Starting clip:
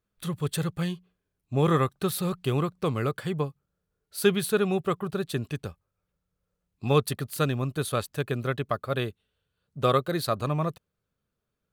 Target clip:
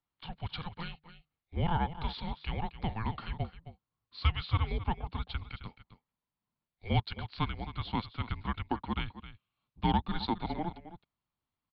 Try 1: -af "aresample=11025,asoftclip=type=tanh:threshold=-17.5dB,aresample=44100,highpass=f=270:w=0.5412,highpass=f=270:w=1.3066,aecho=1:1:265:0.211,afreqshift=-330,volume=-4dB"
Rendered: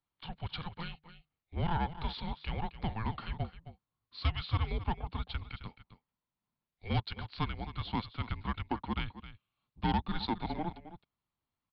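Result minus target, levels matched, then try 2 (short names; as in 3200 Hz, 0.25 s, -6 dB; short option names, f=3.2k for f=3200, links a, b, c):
soft clip: distortion +15 dB
-af "aresample=11025,asoftclip=type=tanh:threshold=-7.5dB,aresample=44100,highpass=f=270:w=0.5412,highpass=f=270:w=1.3066,aecho=1:1:265:0.211,afreqshift=-330,volume=-4dB"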